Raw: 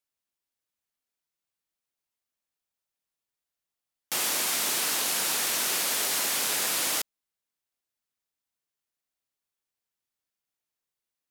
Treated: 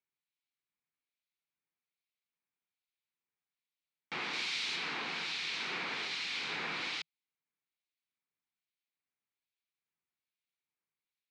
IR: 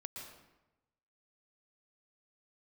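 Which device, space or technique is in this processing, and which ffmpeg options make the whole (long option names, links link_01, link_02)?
guitar amplifier with harmonic tremolo: -filter_complex "[0:a]acrossover=split=2100[link_01][link_02];[link_01]aeval=exprs='val(0)*(1-0.7/2+0.7/2*cos(2*PI*1.2*n/s))':channel_layout=same[link_03];[link_02]aeval=exprs='val(0)*(1-0.7/2-0.7/2*cos(2*PI*1.2*n/s))':channel_layout=same[link_04];[link_03][link_04]amix=inputs=2:normalize=0,asoftclip=type=tanh:threshold=-26dB,highpass=94,equalizer=frequency=160:width_type=q:width=4:gain=6,equalizer=frequency=600:width_type=q:width=4:gain=-10,equalizer=frequency=2300:width_type=q:width=4:gain=8,equalizer=frequency=4000:width_type=q:width=4:gain=4,lowpass=frequency=4300:width=0.5412,lowpass=frequency=4300:width=1.3066,asettb=1/sr,asplit=3[link_05][link_06][link_07];[link_05]atrim=end=4.334[link_08];[link_06]atrim=start=4.33:end=4.76,asetpts=PTS-STARTPTS,afade=type=in:duration=0.004:curve=qsin,afade=type=out:start_time=0.426:duration=0.004:curve=qsin,highshelf=frequency=5700:gain=7[link_09];[link_07]atrim=start=4.756[link_10];[link_08][link_09]acrossfade=duration=0.004:curve1=hsin:curve2=qsin[link_11];[link_11][link_10]acrossfade=duration=0.004:curve1=qsin:curve2=hsin,volume=-2.5dB"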